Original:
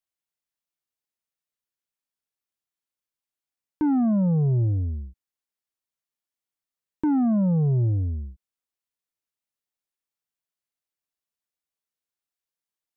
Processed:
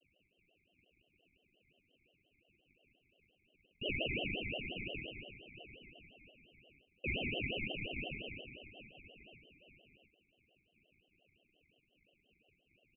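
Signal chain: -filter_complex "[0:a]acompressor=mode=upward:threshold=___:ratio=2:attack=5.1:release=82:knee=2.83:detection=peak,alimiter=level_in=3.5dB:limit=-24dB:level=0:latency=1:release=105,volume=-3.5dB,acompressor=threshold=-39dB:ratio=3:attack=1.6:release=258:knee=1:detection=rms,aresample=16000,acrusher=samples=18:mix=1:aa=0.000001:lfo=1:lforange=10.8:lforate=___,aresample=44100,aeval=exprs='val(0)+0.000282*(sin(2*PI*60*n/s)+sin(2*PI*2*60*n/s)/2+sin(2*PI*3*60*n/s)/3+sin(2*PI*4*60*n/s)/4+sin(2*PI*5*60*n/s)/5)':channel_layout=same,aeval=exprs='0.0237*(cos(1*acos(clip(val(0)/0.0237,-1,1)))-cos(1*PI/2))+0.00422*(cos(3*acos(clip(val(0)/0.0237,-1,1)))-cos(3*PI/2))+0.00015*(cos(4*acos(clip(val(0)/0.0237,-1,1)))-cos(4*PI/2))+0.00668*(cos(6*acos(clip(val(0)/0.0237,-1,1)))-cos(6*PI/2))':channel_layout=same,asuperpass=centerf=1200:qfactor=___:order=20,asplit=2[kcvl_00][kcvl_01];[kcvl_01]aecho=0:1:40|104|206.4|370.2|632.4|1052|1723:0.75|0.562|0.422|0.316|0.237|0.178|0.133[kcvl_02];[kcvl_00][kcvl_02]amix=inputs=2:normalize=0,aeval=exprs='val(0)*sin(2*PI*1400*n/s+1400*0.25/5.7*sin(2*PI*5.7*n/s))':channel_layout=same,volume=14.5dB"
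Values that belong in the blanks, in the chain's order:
-31dB, 2.6, 2.6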